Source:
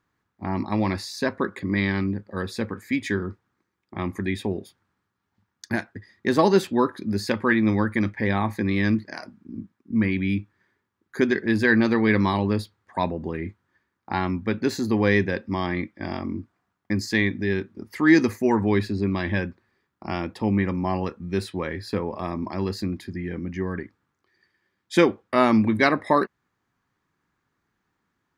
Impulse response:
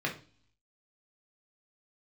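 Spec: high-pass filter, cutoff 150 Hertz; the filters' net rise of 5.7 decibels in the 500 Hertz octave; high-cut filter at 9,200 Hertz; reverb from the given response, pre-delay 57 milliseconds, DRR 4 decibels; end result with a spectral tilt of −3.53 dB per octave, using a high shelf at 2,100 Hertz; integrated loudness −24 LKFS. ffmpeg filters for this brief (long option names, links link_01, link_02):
-filter_complex "[0:a]highpass=150,lowpass=9200,equalizer=frequency=500:width_type=o:gain=8,highshelf=frequency=2100:gain=-5.5,asplit=2[link_01][link_02];[1:a]atrim=start_sample=2205,adelay=57[link_03];[link_02][link_03]afir=irnorm=-1:irlink=0,volume=-11dB[link_04];[link_01][link_04]amix=inputs=2:normalize=0,volume=-3dB"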